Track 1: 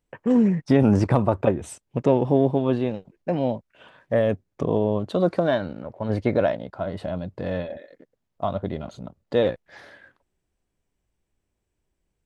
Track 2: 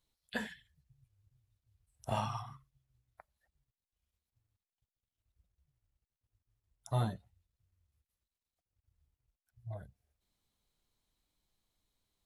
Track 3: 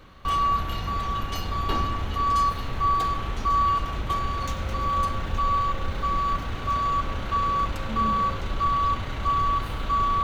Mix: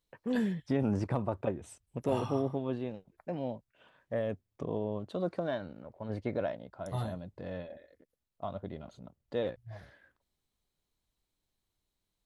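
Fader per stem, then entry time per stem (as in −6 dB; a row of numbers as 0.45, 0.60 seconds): −12.5 dB, −3.0 dB, muted; 0.00 s, 0.00 s, muted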